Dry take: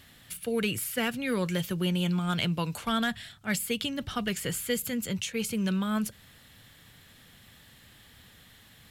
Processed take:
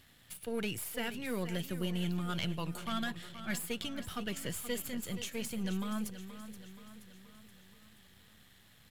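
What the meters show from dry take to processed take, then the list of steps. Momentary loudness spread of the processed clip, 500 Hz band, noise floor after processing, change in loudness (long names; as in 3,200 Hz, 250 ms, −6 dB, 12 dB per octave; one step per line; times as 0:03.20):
16 LU, −7.5 dB, −62 dBFS, −7.5 dB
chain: gain on one half-wave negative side −7 dB
on a send: repeating echo 476 ms, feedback 53%, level −12 dB
on the sum: level −5 dB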